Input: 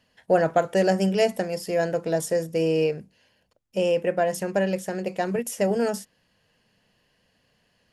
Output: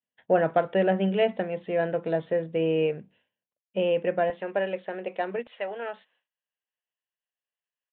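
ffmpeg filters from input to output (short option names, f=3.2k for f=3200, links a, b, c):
-af "agate=range=-33dB:threshold=-51dB:ratio=3:detection=peak,asetnsamples=n=441:p=0,asendcmd='4.3 highpass f 360;5.47 highpass f 780',highpass=120,aresample=8000,aresample=44100,volume=-2dB"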